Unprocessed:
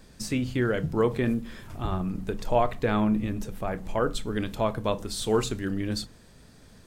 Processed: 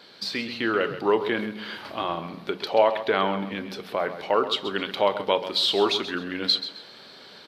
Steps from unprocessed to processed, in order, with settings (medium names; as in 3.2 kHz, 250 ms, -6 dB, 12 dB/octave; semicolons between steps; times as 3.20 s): in parallel at +2 dB: compression, threshold -35 dBFS, peak gain reduction 16.5 dB; on the sum: speed mistake 48 kHz file played as 44.1 kHz; high-pass 420 Hz 12 dB/octave; resonant high shelf 5.5 kHz -10 dB, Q 3; feedback delay 132 ms, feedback 30%, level -12 dB; level rider gain up to 3.5 dB